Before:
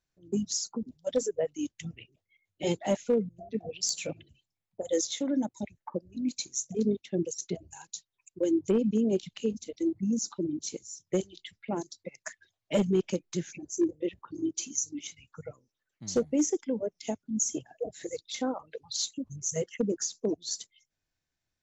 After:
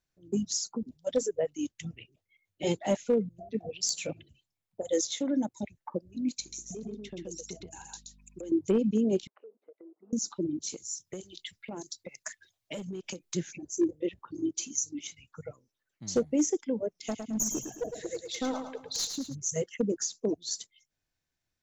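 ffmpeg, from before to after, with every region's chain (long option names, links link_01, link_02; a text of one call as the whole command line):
ffmpeg -i in.wav -filter_complex "[0:a]asettb=1/sr,asplit=3[link_01][link_02][link_03];[link_01]atrim=end=6.404[link_04];[link_02]atrim=start=6.4:end=8.52,asetpts=PTS-STARTPTS,afade=type=in:duration=0.004:curve=qsin,afade=type=out:start_time=2.116:duration=0.004:curve=qsin,acompressor=threshold=-38dB:ratio=6:attack=3.2:release=140:knee=1:detection=peak,aeval=exprs='val(0)+0.00112*(sin(2*PI*50*n/s)+sin(2*PI*2*50*n/s)/2+sin(2*PI*3*50*n/s)/3+sin(2*PI*4*50*n/s)/4+sin(2*PI*5*50*n/s)/5)':channel_layout=same,aecho=1:1:125:0.668,atrim=end_sample=93492[link_05];[link_03]atrim=start=8.516[link_06];[link_04][link_05]acrossfade=duration=0.004:curve1=hsin:curve2=qsin[link_07];[link_07][link_06]acrossfade=duration=0.004:curve1=qsin:curve2=hsin,asettb=1/sr,asplit=3[link_08][link_09][link_10];[link_08]atrim=end=9.274[link_11];[link_09]atrim=start=9.27:end=10.13,asetpts=PTS-STARTPTS,afade=type=in:duration=0.004:curve=qsin,afade=type=out:start_time=0.856:duration=0.004:curve=qsin,asuperpass=centerf=760:order=8:qfactor=0.73,acompressor=threshold=-50dB:ratio=4:attack=3.2:release=140:knee=1:detection=peak[link_12];[link_10]atrim=start=10.126[link_13];[link_11][link_12]acrossfade=duration=0.004:curve1=hsin:curve2=qsin[link_14];[link_14][link_13]acrossfade=duration=0.004:curve1=qsin:curve2=hsin,asettb=1/sr,asplit=3[link_15][link_16][link_17];[link_15]atrim=end=10.694[link_18];[link_16]atrim=start=10.69:end=13.35,asetpts=PTS-STARTPTS,afade=type=in:duration=0.004:curve=qsin,afade=type=out:start_time=2.656:duration=0.004:curve=qsin,acompressor=threshold=-35dB:ratio=12:attack=3.2:release=140:knee=1:detection=peak,highshelf=frequency=3700:gain=8[link_19];[link_17]atrim=start=13.346[link_20];[link_18][link_19]acrossfade=duration=0.004:curve1=hsin:curve2=qsin[link_21];[link_21][link_20]acrossfade=duration=0.004:curve1=qsin:curve2=hsin,asettb=1/sr,asplit=3[link_22][link_23][link_24];[link_22]atrim=end=16.894[link_25];[link_23]atrim=start=16.89:end=19.35,asetpts=PTS-STARTPTS,afade=type=in:duration=0.004:curve=qsin,afade=type=out:start_time=2.456:duration=0.004:curve=qsin,aeval=exprs='clip(val(0),-1,0.0398)':channel_layout=same,aecho=1:1:108|216|324|432|540:0.447|0.179|0.0715|0.0286|0.0114,atrim=end_sample=108486[link_26];[link_24]atrim=start=19.346[link_27];[link_25][link_26]acrossfade=duration=0.004:curve1=hsin:curve2=qsin[link_28];[link_28][link_27]acrossfade=duration=0.004:curve1=qsin:curve2=hsin" out.wav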